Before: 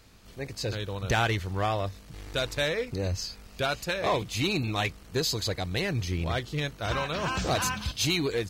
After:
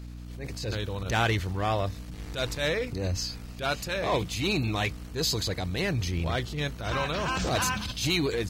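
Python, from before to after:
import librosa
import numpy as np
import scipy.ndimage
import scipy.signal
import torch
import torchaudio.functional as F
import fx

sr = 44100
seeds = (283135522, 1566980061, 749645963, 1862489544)

y = fx.transient(x, sr, attack_db=-10, sustain_db=2)
y = fx.add_hum(y, sr, base_hz=60, snr_db=11)
y = F.gain(torch.from_numpy(y), 1.5).numpy()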